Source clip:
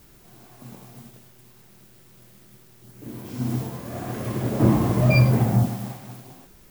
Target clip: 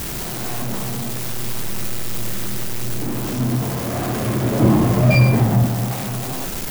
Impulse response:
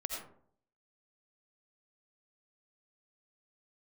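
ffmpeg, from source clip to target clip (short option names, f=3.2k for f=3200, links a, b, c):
-filter_complex "[0:a]aeval=exprs='val(0)+0.5*0.0668*sgn(val(0))':c=same,asplit=2[a][b];[1:a]atrim=start_sample=2205[c];[b][c]afir=irnorm=-1:irlink=0,volume=-5.5dB[d];[a][d]amix=inputs=2:normalize=0,volume=-1dB"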